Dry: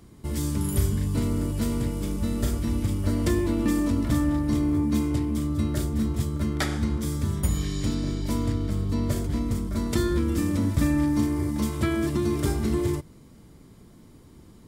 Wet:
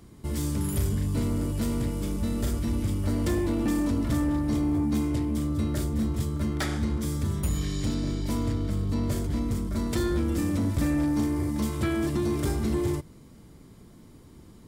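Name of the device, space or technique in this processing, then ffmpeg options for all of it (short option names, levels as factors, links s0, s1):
saturation between pre-emphasis and de-emphasis: -af "highshelf=f=3700:g=11,asoftclip=type=tanh:threshold=0.119,highshelf=f=3700:g=-11"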